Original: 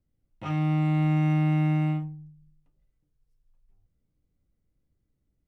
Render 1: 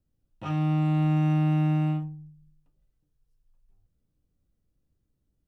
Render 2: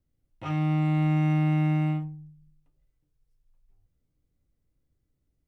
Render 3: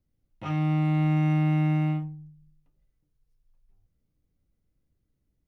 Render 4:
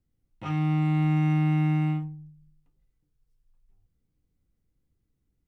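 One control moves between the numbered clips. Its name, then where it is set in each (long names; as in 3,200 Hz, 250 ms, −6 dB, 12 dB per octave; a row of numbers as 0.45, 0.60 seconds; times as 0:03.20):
notch filter, centre frequency: 2,100, 200, 7,800, 600 Hertz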